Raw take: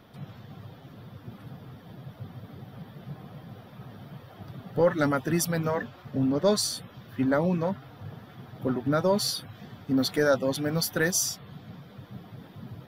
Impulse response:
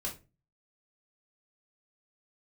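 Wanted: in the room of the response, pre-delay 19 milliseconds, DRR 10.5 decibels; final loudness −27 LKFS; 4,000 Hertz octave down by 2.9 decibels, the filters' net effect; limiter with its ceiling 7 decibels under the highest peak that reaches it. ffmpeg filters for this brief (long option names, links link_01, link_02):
-filter_complex "[0:a]equalizer=frequency=4000:width_type=o:gain=-3.5,alimiter=limit=-18.5dB:level=0:latency=1,asplit=2[link_01][link_02];[1:a]atrim=start_sample=2205,adelay=19[link_03];[link_02][link_03]afir=irnorm=-1:irlink=0,volume=-11.5dB[link_04];[link_01][link_04]amix=inputs=2:normalize=0,volume=2dB"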